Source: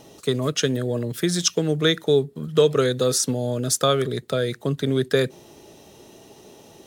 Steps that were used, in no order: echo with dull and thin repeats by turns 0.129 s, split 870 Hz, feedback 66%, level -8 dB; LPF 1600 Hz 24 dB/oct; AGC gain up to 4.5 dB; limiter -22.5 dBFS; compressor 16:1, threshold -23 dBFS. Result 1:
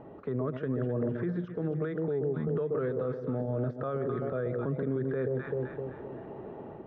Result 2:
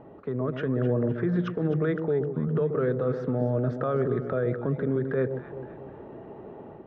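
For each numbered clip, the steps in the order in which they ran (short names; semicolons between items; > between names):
AGC > echo with dull and thin repeats by turns > compressor > limiter > LPF; LPF > compressor > limiter > echo with dull and thin repeats by turns > AGC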